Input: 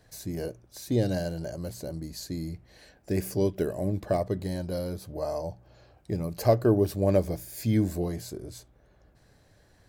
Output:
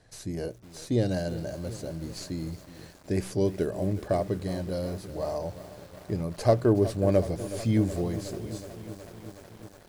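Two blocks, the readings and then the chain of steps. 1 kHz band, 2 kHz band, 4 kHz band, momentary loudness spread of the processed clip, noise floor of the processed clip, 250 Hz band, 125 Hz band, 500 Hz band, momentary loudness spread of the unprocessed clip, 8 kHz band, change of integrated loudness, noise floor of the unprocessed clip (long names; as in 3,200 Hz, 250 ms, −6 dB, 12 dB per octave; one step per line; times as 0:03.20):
+0.5 dB, +1.0 dB, +0.5 dB, 20 LU, −52 dBFS, +0.5 dB, +0.5 dB, +0.5 dB, 14 LU, −1.0 dB, 0.0 dB, −62 dBFS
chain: stylus tracing distortion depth 0.052 ms
Butterworth low-pass 11,000 Hz 36 dB per octave
feedback echo at a low word length 369 ms, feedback 80%, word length 7 bits, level −14 dB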